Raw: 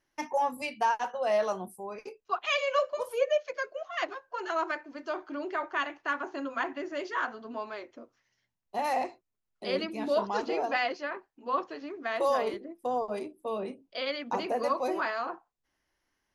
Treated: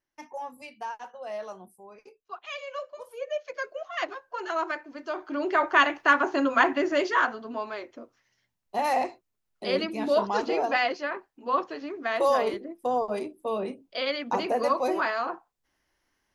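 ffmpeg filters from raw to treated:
ffmpeg -i in.wav -af "volume=11dB,afade=type=in:start_time=3.2:duration=0.48:silence=0.298538,afade=type=in:start_time=5.16:duration=0.59:silence=0.334965,afade=type=out:start_time=6.92:duration=0.52:silence=0.446684" out.wav

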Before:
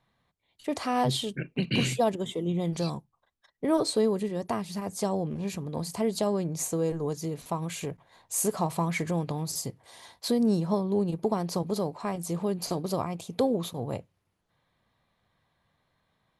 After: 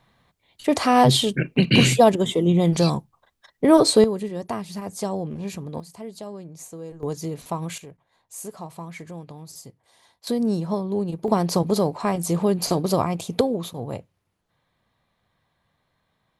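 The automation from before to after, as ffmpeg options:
ffmpeg -i in.wav -af "asetnsamples=nb_out_samples=441:pad=0,asendcmd='4.04 volume volume 1.5dB;5.8 volume volume -9dB;7.03 volume volume 3dB;7.78 volume volume -8.5dB;10.27 volume volume 1.5dB;11.28 volume volume 8.5dB;13.41 volume volume 2dB',volume=10.5dB" out.wav

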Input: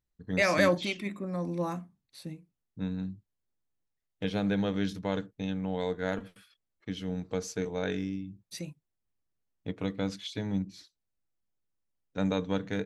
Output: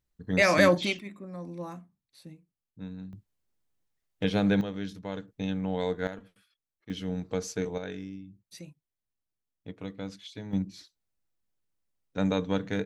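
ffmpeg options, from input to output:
ffmpeg -i in.wav -af "asetnsamples=nb_out_samples=441:pad=0,asendcmd='0.99 volume volume -6.5dB;3.13 volume volume 4.5dB;4.61 volume volume -5dB;5.28 volume volume 2dB;6.07 volume volume -8.5dB;6.9 volume volume 1.5dB;7.78 volume volume -6dB;10.53 volume volume 2dB',volume=3.5dB" out.wav

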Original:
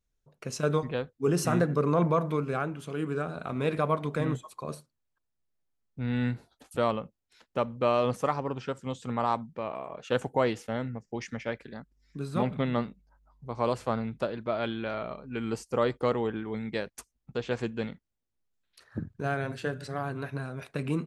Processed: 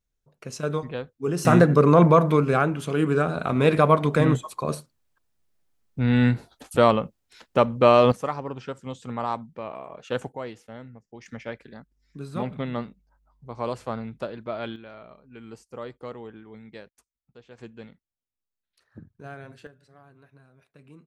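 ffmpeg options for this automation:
ffmpeg -i in.wav -af "asetnsamples=nb_out_samples=441:pad=0,asendcmd='1.45 volume volume 9.5dB;8.12 volume volume -0.5dB;10.32 volume volume -9dB;11.26 volume volume -1.5dB;14.76 volume volume -10.5dB;16.89 volume volume -17.5dB;17.58 volume volume -10dB;19.67 volume volume -20dB',volume=-0.5dB" out.wav

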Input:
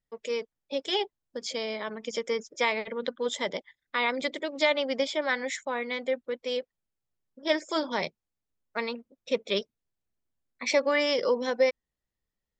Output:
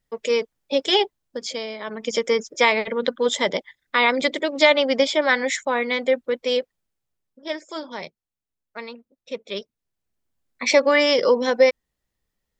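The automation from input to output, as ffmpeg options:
ffmpeg -i in.wav -af "volume=31dB,afade=type=out:start_time=0.9:duration=0.87:silence=0.298538,afade=type=in:start_time=1.77:duration=0.33:silence=0.334965,afade=type=out:start_time=6.54:duration=0.99:silence=0.237137,afade=type=in:start_time=9.47:duration=1.17:silence=0.266073" out.wav

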